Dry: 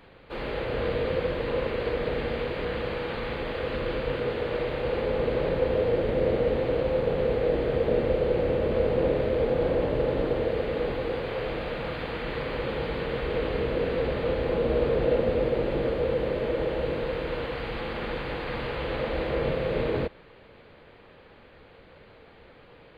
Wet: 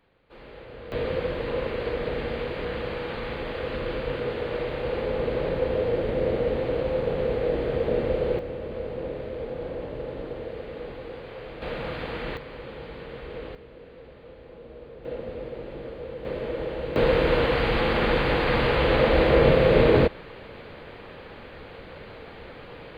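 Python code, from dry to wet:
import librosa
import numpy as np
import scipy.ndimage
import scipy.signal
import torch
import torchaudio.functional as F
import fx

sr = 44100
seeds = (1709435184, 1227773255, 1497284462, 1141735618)

y = fx.gain(x, sr, db=fx.steps((0.0, -13.0), (0.92, -0.5), (8.39, -8.5), (11.62, 0.0), (12.37, -9.0), (13.55, -19.5), (15.05, -10.5), (16.25, -3.0), (16.96, 9.5)))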